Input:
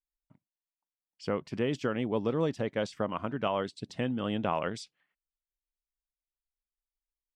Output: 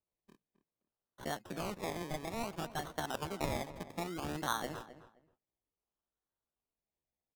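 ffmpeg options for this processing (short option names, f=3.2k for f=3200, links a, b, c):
-filter_complex "[0:a]highpass=f=53:p=1,acrossover=split=110|740|3900[a][b][c][d];[b]acompressor=threshold=-39dB:ratio=16[e];[a][e][c][d]amix=inputs=4:normalize=0,acrusher=samples=35:mix=1:aa=0.000001:lfo=1:lforange=21:lforate=0.6,asetrate=62367,aresample=44100,atempo=0.707107,asplit=2[f][g];[g]adelay=263,lowpass=f=2.1k:p=1,volume=-13.5dB,asplit=2[h][i];[i]adelay=263,lowpass=f=2.1k:p=1,volume=0.21[j];[f][h][j]amix=inputs=3:normalize=0,volume=-1.5dB"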